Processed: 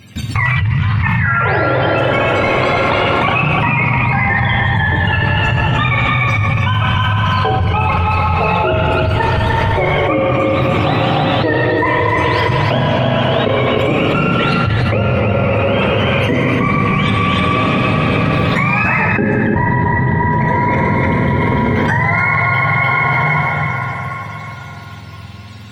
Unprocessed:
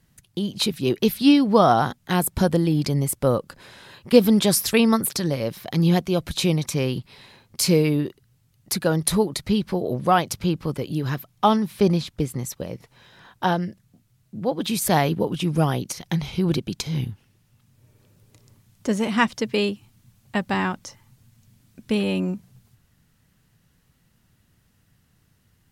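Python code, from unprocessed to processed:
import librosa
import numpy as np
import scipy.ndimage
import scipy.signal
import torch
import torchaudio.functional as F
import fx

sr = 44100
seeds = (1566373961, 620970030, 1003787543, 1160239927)

p1 = fx.octave_mirror(x, sr, pivot_hz=630.0)
p2 = fx.high_shelf(p1, sr, hz=6300.0, db=-8.5)
p3 = fx.level_steps(p2, sr, step_db=20)
p4 = fx.rev_plate(p3, sr, seeds[0], rt60_s=4.4, hf_ratio=0.6, predelay_ms=0, drr_db=-1.5)
p5 = fx.echo_pitch(p4, sr, ms=157, semitones=3, count=2, db_per_echo=-3.0)
p6 = p5 + fx.echo_single(p5, sr, ms=299, db=-4.5, dry=0)
p7 = fx.env_flatten(p6, sr, amount_pct=100)
y = F.gain(torch.from_numpy(p7), -1.0).numpy()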